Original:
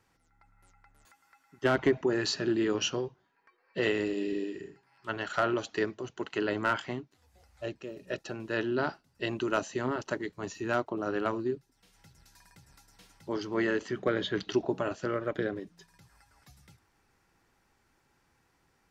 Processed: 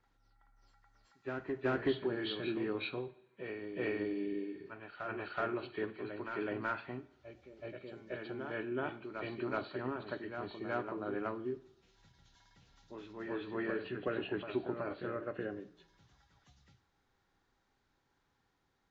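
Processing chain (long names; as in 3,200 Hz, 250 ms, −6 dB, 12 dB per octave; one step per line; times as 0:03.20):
hearing-aid frequency compression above 1,700 Hz 1.5 to 1
backwards echo 375 ms −6.5 dB
coupled-rooms reverb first 0.57 s, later 1.6 s, from −19 dB, DRR 11.5 dB
level −8 dB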